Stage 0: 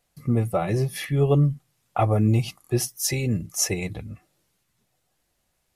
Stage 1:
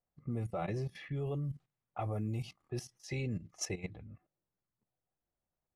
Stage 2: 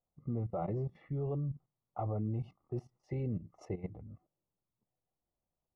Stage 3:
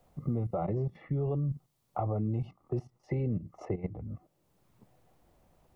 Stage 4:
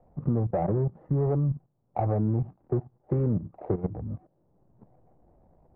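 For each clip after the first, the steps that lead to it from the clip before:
level-controlled noise filter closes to 1.2 kHz, open at -16 dBFS; level held to a coarse grid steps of 14 dB; trim -7.5 dB
Savitzky-Golay filter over 65 samples; trim +1 dB
three bands compressed up and down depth 70%; trim +4.5 dB
median filter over 41 samples; resonant low-pass 950 Hz, resonance Q 1.7; trim +5.5 dB

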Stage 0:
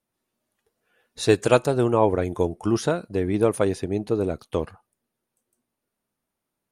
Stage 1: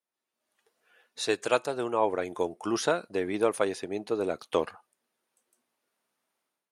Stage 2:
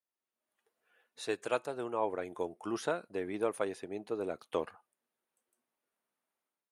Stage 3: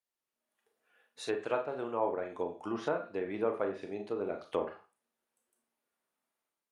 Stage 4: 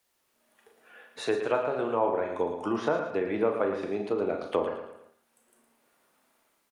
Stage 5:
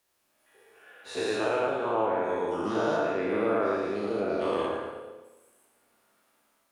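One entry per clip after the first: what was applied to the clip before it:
frequency weighting A; level rider gain up to 13 dB; trim -8.5 dB
peaking EQ 5.2 kHz -6 dB 1.3 oct; trim -7 dB
Schroeder reverb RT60 0.32 s, combs from 27 ms, DRR 4.5 dB; low-pass that closes with the level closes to 1.8 kHz, closed at -29.5 dBFS
on a send: feedback delay 112 ms, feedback 35%, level -9 dB; on the sum: three bands compressed up and down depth 40%; trim +6 dB
every event in the spectrogram widened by 240 ms; plate-style reverb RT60 1.1 s, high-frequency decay 1×, DRR 2 dB; trim -7 dB

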